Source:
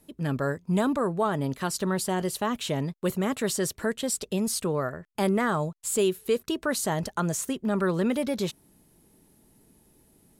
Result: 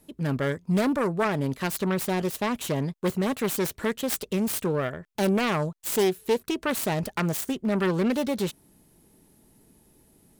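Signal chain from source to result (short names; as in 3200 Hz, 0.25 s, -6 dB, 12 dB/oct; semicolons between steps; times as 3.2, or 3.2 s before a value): self-modulated delay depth 0.23 ms; gain +1.5 dB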